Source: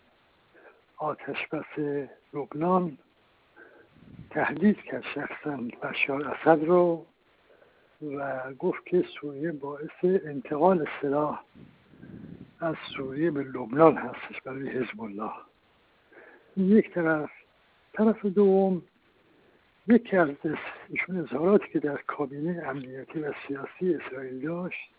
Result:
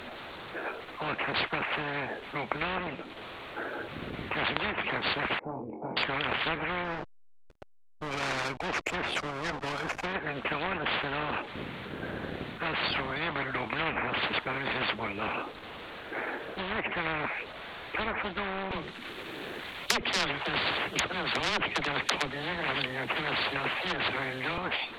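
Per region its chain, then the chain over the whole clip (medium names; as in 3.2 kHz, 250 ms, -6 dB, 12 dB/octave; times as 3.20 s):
5.39–5.97 s: cascade formant filter u + flutter echo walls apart 3.9 m, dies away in 0.2 s + loudspeaker Doppler distortion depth 0.1 ms
6.84–10.13 s: distance through air 90 m + hysteresis with a dead band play -43 dBFS
18.71–24.58 s: overload inside the chain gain 19 dB + treble shelf 2.9 kHz +10 dB + phase dispersion lows, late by 49 ms, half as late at 300 Hz
whole clip: low-pass that closes with the level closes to 1.9 kHz, closed at -18 dBFS; bass shelf 170 Hz -6 dB; spectrum-flattening compressor 10:1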